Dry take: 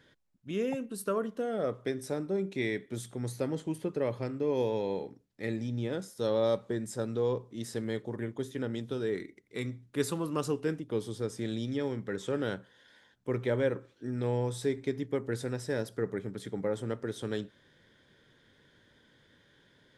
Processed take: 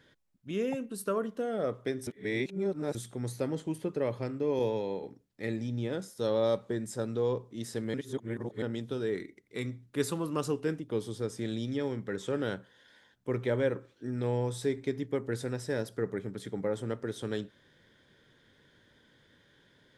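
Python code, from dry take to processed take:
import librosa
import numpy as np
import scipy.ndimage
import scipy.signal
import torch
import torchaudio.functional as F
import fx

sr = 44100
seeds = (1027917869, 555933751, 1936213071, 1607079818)

y = fx.band_widen(x, sr, depth_pct=100, at=(4.59, 5.03))
y = fx.edit(y, sr, fx.reverse_span(start_s=2.07, length_s=0.88),
    fx.reverse_span(start_s=7.94, length_s=0.68), tone=tone)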